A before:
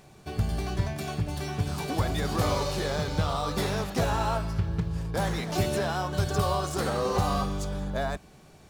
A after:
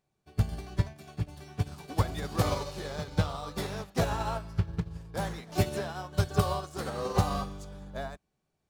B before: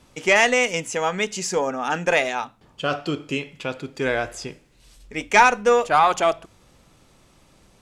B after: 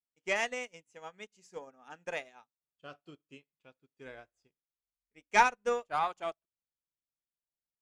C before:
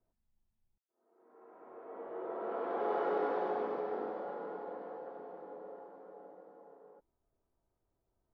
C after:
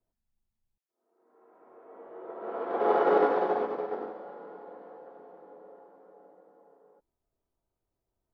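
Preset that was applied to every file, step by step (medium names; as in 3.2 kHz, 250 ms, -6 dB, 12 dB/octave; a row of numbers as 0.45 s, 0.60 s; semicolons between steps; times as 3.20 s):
upward expansion 2.5:1, over -41 dBFS; peak normalisation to -12 dBFS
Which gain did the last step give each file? +2.5 dB, -7.5 dB, +12.0 dB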